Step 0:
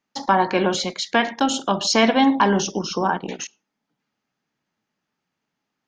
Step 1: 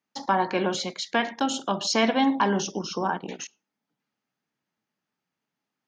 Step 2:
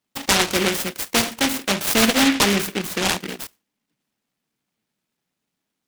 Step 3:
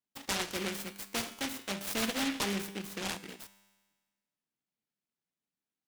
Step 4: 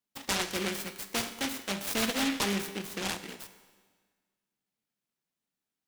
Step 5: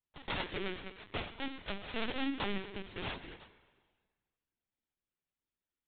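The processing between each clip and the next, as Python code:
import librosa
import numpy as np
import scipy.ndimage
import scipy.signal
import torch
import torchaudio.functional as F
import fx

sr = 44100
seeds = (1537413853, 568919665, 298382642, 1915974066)

y1 = scipy.signal.sosfilt(scipy.signal.butter(2, 79.0, 'highpass', fs=sr, output='sos'), x)
y1 = F.gain(torch.from_numpy(y1), -5.5).numpy()
y2 = fx.noise_mod_delay(y1, sr, seeds[0], noise_hz=2200.0, depth_ms=0.26)
y2 = F.gain(torch.from_numpy(y2), 5.0).numpy()
y3 = fx.comb_fb(y2, sr, f0_hz=99.0, decay_s=1.4, harmonics='all', damping=0.0, mix_pct=60)
y3 = F.gain(torch.from_numpy(y3), -8.5).numpy()
y4 = fx.rev_plate(y3, sr, seeds[1], rt60_s=1.6, hf_ratio=0.85, predelay_ms=0, drr_db=13.5)
y4 = F.gain(torch.from_numpy(y4), 3.0).numpy()
y5 = fx.lpc_vocoder(y4, sr, seeds[2], excitation='pitch_kept', order=16)
y5 = F.gain(torch.from_numpy(y5), -5.0).numpy()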